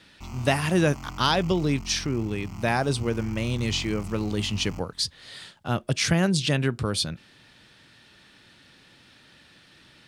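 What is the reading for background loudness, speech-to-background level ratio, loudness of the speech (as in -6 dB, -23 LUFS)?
-40.5 LUFS, 14.5 dB, -26.0 LUFS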